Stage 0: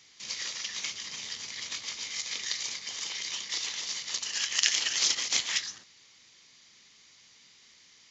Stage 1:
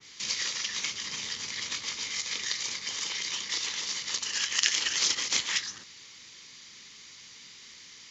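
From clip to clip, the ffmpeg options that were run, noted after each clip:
-filter_complex "[0:a]equalizer=f=690:w=3.9:g=-8,asplit=2[s0][s1];[s1]acompressor=threshold=0.01:ratio=6,volume=1.12[s2];[s0][s2]amix=inputs=2:normalize=0,adynamicequalizer=threshold=0.01:dfrequency=1900:dqfactor=0.7:tfrequency=1900:tqfactor=0.7:attack=5:release=100:ratio=0.375:range=2:mode=cutabove:tftype=highshelf,volume=1.26"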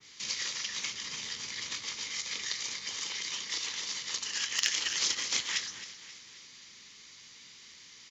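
-filter_complex "[0:a]acrossover=split=990[s0][s1];[s1]volume=2.24,asoftclip=hard,volume=0.447[s2];[s0][s2]amix=inputs=2:normalize=0,aecho=1:1:267|534|801|1068|1335:0.2|0.104|0.054|0.0281|0.0146,volume=0.668"

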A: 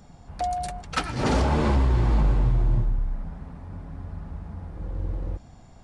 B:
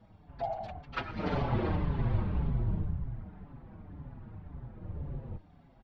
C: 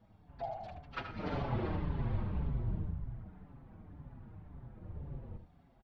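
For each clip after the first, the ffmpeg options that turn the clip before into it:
-filter_complex "[0:a]lowpass=f=3700:w=0.5412,lowpass=f=3700:w=1.3066,afftfilt=real='hypot(re,im)*cos(2*PI*random(0))':imag='hypot(re,im)*sin(2*PI*random(1))':win_size=512:overlap=0.75,asplit=2[s0][s1];[s1]adelay=5.7,afreqshift=-1.9[s2];[s0][s2]amix=inputs=2:normalize=1"
-af "aecho=1:1:77:0.355,volume=0.531"

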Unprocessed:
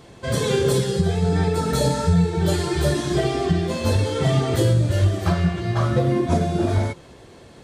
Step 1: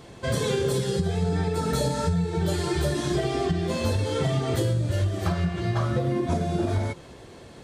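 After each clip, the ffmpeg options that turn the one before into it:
-af "acompressor=threshold=0.0794:ratio=4"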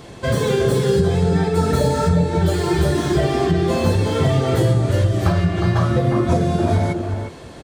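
-filter_complex "[0:a]acrossover=split=2300[s0][s1];[s0]aecho=1:1:359:0.531[s2];[s1]asoftclip=type=tanh:threshold=0.0119[s3];[s2][s3]amix=inputs=2:normalize=0,volume=2.24"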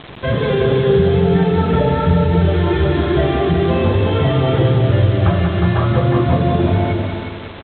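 -af "aresample=8000,acrusher=bits=5:mix=0:aa=0.000001,aresample=44100,aecho=1:1:187|374|561|748|935|1122:0.501|0.236|0.111|0.052|0.0245|0.0115,volume=1.19"

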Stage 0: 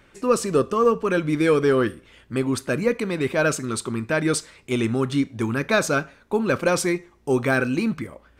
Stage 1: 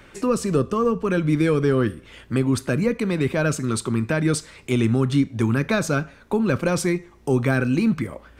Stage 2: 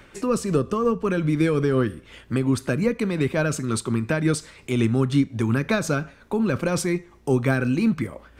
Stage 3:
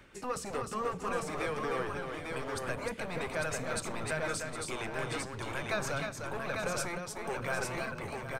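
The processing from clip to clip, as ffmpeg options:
-filter_complex "[0:a]acrossover=split=220[s0][s1];[s1]acompressor=threshold=0.0158:ratio=2[s2];[s0][s2]amix=inputs=2:normalize=0,volume=2.24"
-af "tremolo=f=5.6:d=0.3"
-filter_complex "[0:a]acrossover=split=470[s0][s1];[s0]aeval=exprs='0.0398*(abs(mod(val(0)/0.0398+3,4)-2)-1)':c=same[s2];[s2][s1]amix=inputs=2:normalize=0,aecho=1:1:304|762|849:0.531|0.251|0.631,volume=0.376"

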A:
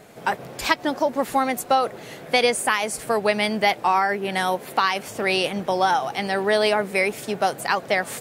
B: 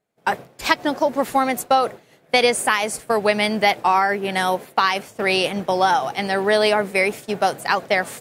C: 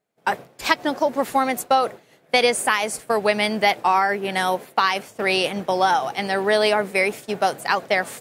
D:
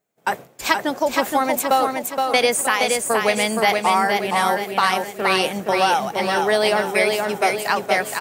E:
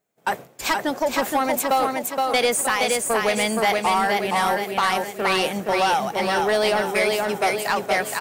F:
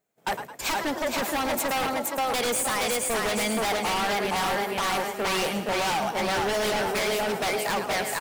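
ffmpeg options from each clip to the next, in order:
-af "agate=range=0.0224:threshold=0.0501:ratio=3:detection=peak,volume=1.33"
-af "lowshelf=f=120:g=-5.5,volume=0.891"
-filter_complex "[0:a]aexciter=amount=2.2:drive=2.9:freq=6400,asplit=2[s0][s1];[s1]aecho=0:1:470|940|1410|1880|2350:0.631|0.265|0.111|0.0467|0.0196[s2];[s0][s2]amix=inputs=2:normalize=0"
-af "asoftclip=type=tanh:threshold=0.224"
-filter_complex "[0:a]asplit=5[s0][s1][s2][s3][s4];[s1]adelay=108,afreqshift=30,volume=0.251[s5];[s2]adelay=216,afreqshift=60,volume=0.108[s6];[s3]adelay=324,afreqshift=90,volume=0.0462[s7];[s4]adelay=432,afreqshift=120,volume=0.02[s8];[s0][s5][s6][s7][s8]amix=inputs=5:normalize=0,aeval=exprs='0.112*(abs(mod(val(0)/0.112+3,4)-2)-1)':c=same,volume=0.794"

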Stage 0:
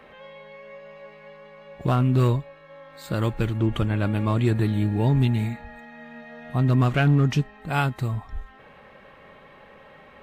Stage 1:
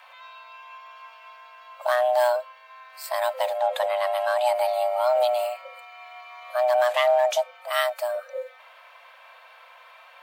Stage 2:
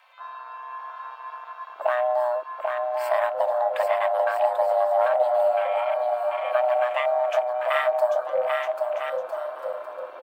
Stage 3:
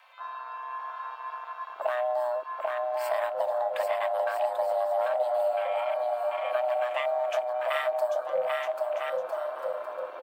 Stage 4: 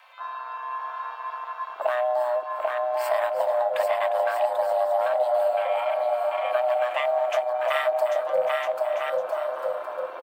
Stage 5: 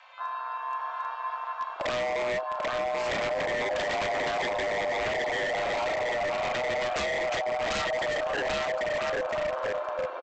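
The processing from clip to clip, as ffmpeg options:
-af "aemphasis=mode=production:type=50kf,afreqshift=490,volume=0.841"
-af "acompressor=threshold=0.0355:ratio=12,aecho=1:1:790|1304|1637|1854|1995:0.631|0.398|0.251|0.158|0.1,afwtdn=0.01,volume=2.82"
-filter_complex "[0:a]acrossover=split=400|3000[s0][s1][s2];[s1]acompressor=threshold=0.0316:ratio=2.5[s3];[s0][s3][s2]amix=inputs=3:normalize=0"
-af "aecho=1:1:354:0.237,volume=1.58"
-filter_complex "[0:a]asplit=2[s0][s1];[s1]adelay=33,volume=0.251[s2];[s0][s2]amix=inputs=2:normalize=0,aresample=16000,aeval=exprs='0.0631*(abs(mod(val(0)/0.0631+3,4)-2)-1)':c=same,aresample=44100"

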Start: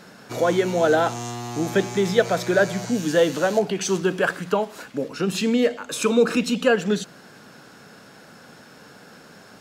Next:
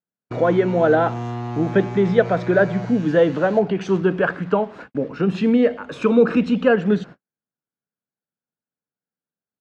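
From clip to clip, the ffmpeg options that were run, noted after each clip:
-af "lowpass=2100,agate=range=0.00224:threshold=0.0112:ratio=16:detection=peak,lowshelf=f=210:g=7,volume=1.19"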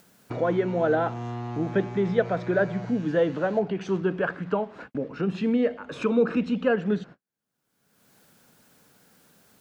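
-af "acompressor=mode=upward:threshold=0.0891:ratio=2.5,volume=0.447"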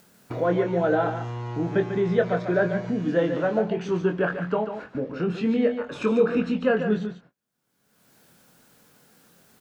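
-filter_complex "[0:a]asplit=2[s0][s1];[s1]adelay=23,volume=0.501[s2];[s0][s2]amix=inputs=2:normalize=0,aecho=1:1:144:0.376"

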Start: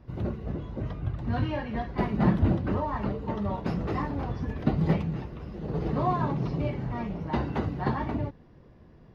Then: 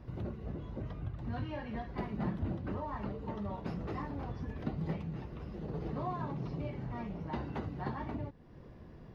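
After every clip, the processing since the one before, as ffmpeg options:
-af "acompressor=threshold=0.00501:ratio=2,volume=1.19"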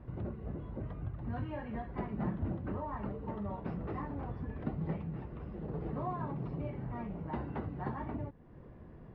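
-af "lowpass=2100"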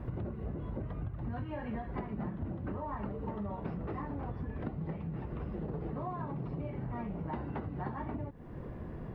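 -af "acompressor=threshold=0.00631:ratio=10,volume=2.99"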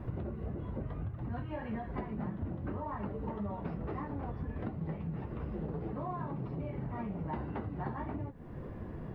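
-af "flanger=delay=9.2:depth=5.1:regen=-47:speed=1.7:shape=sinusoidal,volume=1.58"

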